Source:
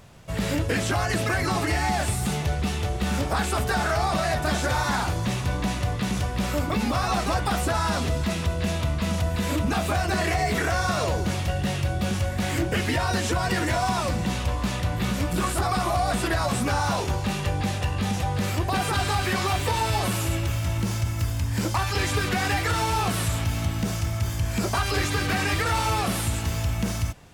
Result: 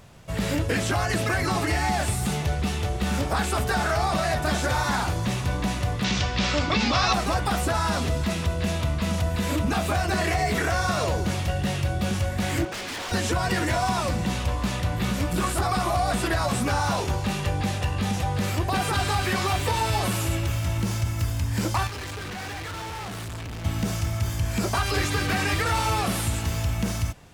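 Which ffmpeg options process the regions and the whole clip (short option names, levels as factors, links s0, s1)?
-filter_complex "[0:a]asettb=1/sr,asplit=3[s0][s1][s2];[s0]atrim=end=6.044[s3];[s1]atrim=start=6.04:end=7.13,asetpts=PTS-STARTPTS,afade=t=in:d=0.004:c=qsin,afade=t=out:st=1.086:d=0.004:c=qsin,lowpass=f=6200:w=0.5412,lowpass=f=6200:w=1.3066,equalizer=f=4100:t=o:w=2.7:g=10[s4];[s2]atrim=start=7.126[s5];[s3][s4]acrossfade=d=0.004:c1=hsin:c2=qsin[s6];[s6][s5]acrossfade=d=0.004:c1=qsin:c2=hsin,asettb=1/sr,asplit=3[s7][s8][s9];[s7]atrim=end=12.654[s10];[s8]atrim=start=12.65:end=13.12,asetpts=PTS-STARTPTS,afade=t=in:d=0.004:c=qsin,afade=t=out:st=0.466:d=0.004:c=qsin,highpass=290,lowpass=6300,aeval=exprs='0.0398*(abs(mod(val(0)/0.0398+3,4)-2)-1)':c=same[s11];[s9]atrim=start=13.116[s12];[s10][s11]acrossfade=d=0.004:c1=hsin:c2=qsin[s13];[s13][s12]acrossfade=d=0.004:c1=qsin:c2=hsin,asettb=1/sr,asplit=3[s14][s15][s16];[s14]atrim=end=21.874[s17];[s15]atrim=start=21.87:end=23.65,asetpts=PTS-STARTPTS,afade=t=in:d=0.004:c=qsin,afade=t=out:st=1.776:d=0.004:c=qsin,highshelf=f=7400:g=-11,volume=44.7,asoftclip=hard,volume=0.0224[s18];[s16]atrim=start=23.646[s19];[s17][s18]acrossfade=d=0.004:c1=hsin:c2=qsin[s20];[s20][s19]acrossfade=d=0.004:c1=qsin:c2=hsin"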